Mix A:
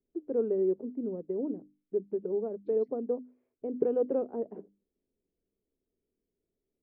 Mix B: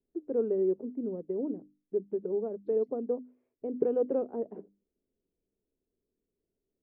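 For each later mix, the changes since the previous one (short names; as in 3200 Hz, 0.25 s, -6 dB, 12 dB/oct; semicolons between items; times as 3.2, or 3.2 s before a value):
second voice: add bell 1700 Hz -13 dB 2 oct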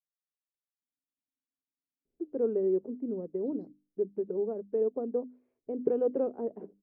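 first voice: entry +2.05 s; second voice: entry +0.80 s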